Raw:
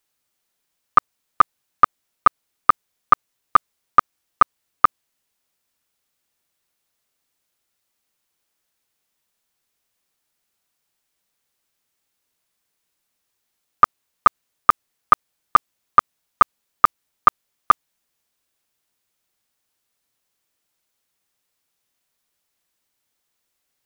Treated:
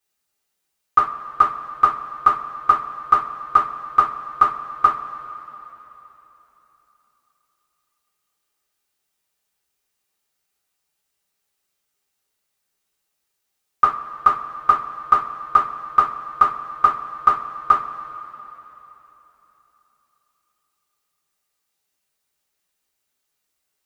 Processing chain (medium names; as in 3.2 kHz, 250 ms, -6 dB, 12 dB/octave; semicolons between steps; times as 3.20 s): two-slope reverb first 0.25 s, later 3.6 s, from -21 dB, DRR -7.5 dB; trim -9 dB